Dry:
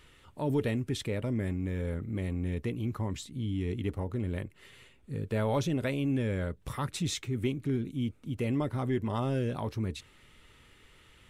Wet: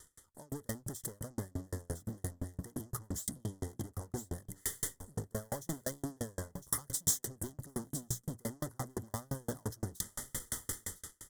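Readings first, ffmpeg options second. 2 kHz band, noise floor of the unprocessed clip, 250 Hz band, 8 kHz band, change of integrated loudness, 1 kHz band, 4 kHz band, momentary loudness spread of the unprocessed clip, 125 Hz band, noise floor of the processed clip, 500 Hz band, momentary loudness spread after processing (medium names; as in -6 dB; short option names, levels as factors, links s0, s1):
-9.0 dB, -60 dBFS, -11.5 dB, +9.5 dB, -7.0 dB, -8.5 dB, -6.5 dB, 6 LU, -10.0 dB, -69 dBFS, -11.0 dB, 8 LU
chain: -af "highshelf=f=6700:g=-8.5,bandreject=f=60:t=h:w=6,bandreject=f=120:t=h:w=6,bandreject=f=180:t=h:w=6,areverse,acompressor=threshold=0.01:ratio=8,areverse,alimiter=level_in=6.68:limit=0.0631:level=0:latency=1:release=489,volume=0.15,dynaudnorm=f=110:g=9:m=6.31,asoftclip=type=tanh:threshold=0.0112,aeval=exprs='0.0112*(cos(1*acos(clip(val(0)/0.0112,-1,1)))-cos(1*PI/2))+0.000891*(cos(3*acos(clip(val(0)/0.0112,-1,1)))-cos(3*PI/2))+0.000708*(cos(7*acos(clip(val(0)/0.0112,-1,1)))-cos(7*PI/2))':c=same,aexciter=amount=9.9:drive=7.5:freq=5700,asoftclip=type=hard:threshold=0.0596,asuperstop=centerf=2500:order=20:qfactor=2.5,aecho=1:1:1007:0.211,aeval=exprs='val(0)*pow(10,-40*if(lt(mod(5.8*n/s,1),2*abs(5.8)/1000),1-mod(5.8*n/s,1)/(2*abs(5.8)/1000),(mod(5.8*n/s,1)-2*abs(5.8)/1000)/(1-2*abs(5.8)/1000))/20)':c=same,volume=2.66"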